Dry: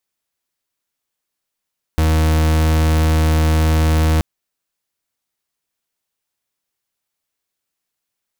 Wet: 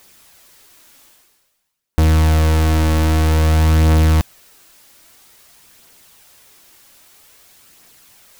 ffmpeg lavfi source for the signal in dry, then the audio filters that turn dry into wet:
-f lavfi -i "aevalsrc='0.2*(2*lt(mod(79*t,1),0.39)-1)':duration=2.23:sample_rate=44100"
-af "areverse,acompressor=mode=upward:threshold=-24dB:ratio=2.5,areverse,aphaser=in_gain=1:out_gain=1:delay=3.7:decay=0.29:speed=0.51:type=triangular"

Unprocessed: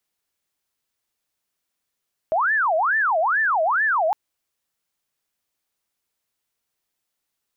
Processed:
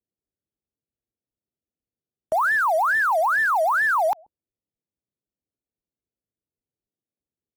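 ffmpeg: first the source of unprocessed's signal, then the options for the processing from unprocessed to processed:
-f lavfi -i "aevalsrc='0.141*sin(2*PI*(1204*t-576/(2*PI*2.3)*sin(2*PI*2.3*t)))':duration=1.81:sample_rate=44100"
-filter_complex "[0:a]acrossover=split=530[link_01][link_02];[link_01]aecho=1:1:134:0.119[link_03];[link_02]acrusher=bits=5:mix=0:aa=0.5[link_04];[link_03][link_04]amix=inputs=2:normalize=0" -ar 48000 -c:a libvorbis -b:a 96k

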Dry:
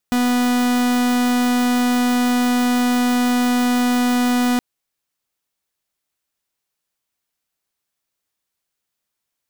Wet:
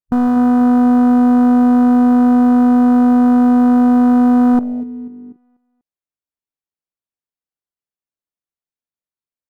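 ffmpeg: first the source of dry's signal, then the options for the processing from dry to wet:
-f lavfi -i "aevalsrc='0.141*(2*lt(mod(246*t,1),0.45)-1)':duration=4.47:sample_rate=44100"
-filter_complex "[0:a]tiltshelf=frequency=1300:gain=5,asplit=2[link_01][link_02];[link_02]adelay=244,lowpass=frequency=2900:poles=1,volume=-13dB,asplit=2[link_03][link_04];[link_04]adelay=244,lowpass=frequency=2900:poles=1,volume=0.51,asplit=2[link_05][link_06];[link_06]adelay=244,lowpass=frequency=2900:poles=1,volume=0.51,asplit=2[link_07][link_08];[link_08]adelay=244,lowpass=frequency=2900:poles=1,volume=0.51,asplit=2[link_09][link_10];[link_10]adelay=244,lowpass=frequency=2900:poles=1,volume=0.51[link_11];[link_03][link_05][link_07][link_09][link_11]amix=inputs=5:normalize=0[link_12];[link_01][link_12]amix=inputs=2:normalize=0,afwtdn=0.0891"

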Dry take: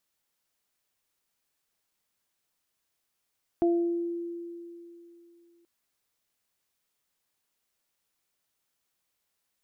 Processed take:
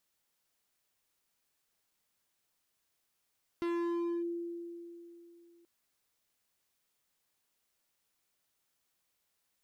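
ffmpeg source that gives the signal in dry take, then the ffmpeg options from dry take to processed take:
-f lavfi -i "aevalsrc='0.1*pow(10,-3*t/2.97)*sin(2*PI*342*t)+0.0422*pow(10,-3*t/0.65)*sin(2*PI*684*t)':duration=2.03:sample_rate=44100"
-af "asoftclip=type=hard:threshold=-32.5dB"

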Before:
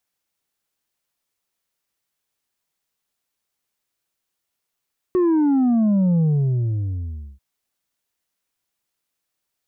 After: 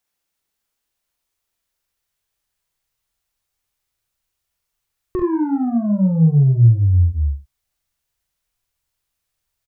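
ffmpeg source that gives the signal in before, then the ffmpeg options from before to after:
-f lavfi -i "aevalsrc='0.178*clip((2.24-t)/1.19,0,1)*tanh(1.58*sin(2*PI*370*2.24/log(65/370)*(exp(log(65/370)*t/2.24)-1)))/tanh(1.58)':duration=2.24:sample_rate=44100"
-filter_complex "[0:a]asubboost=boost=8:cutoff=87,asplit=2[link_01][link_02];[link_02]aecho=0:1:43|68:0.596|0.422[link_03];[link_01][link_03]amix=inputs=2:normalize=0"

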